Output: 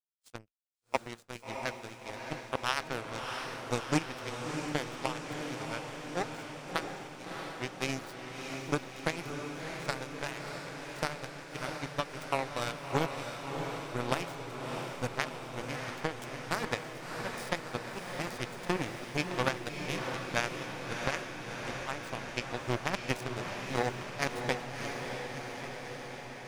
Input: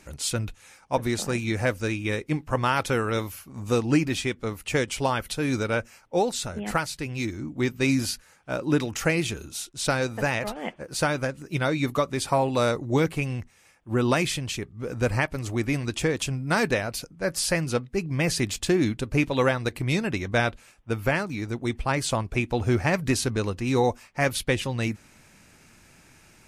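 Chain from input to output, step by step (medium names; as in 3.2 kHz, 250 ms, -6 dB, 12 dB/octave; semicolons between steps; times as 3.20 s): power-law waveshaper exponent 3; echo that smears into a reverb 658 ms, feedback 72%, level -5 dB; expander -43 dBFS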